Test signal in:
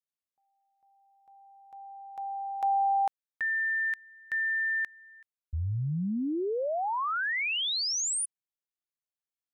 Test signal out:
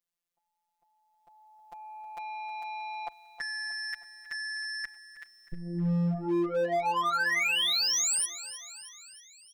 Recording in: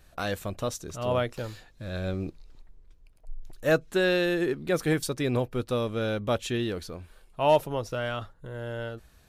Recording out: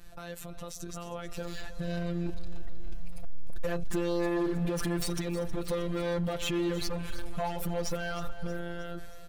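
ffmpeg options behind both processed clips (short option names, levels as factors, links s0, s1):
-af "lowshelf=f=71:g=8.5,acompressor=threshold=0.0251:ratio=6:attack=0.26:release=180:detection=peak,alimiter=level_in=4.22:limit=0.0631:level=0:latency=1:release=52,volume=0.237,dynaudnorm=f=540:g=7:m=5.62,asoftclip=type=tanh:threshold=0.0501,afftfilt=real='hypot(re,im)*cos(PI*b)':imag='0':win_size=1024:overlap=0.75,asoftclip=type=hard:threshold=0.0282,aecho=1:1:315|630|945|1260|1575|1890:0.188|0.109|0.0634|0.0368|0.0213|0.0124,volume=2.11"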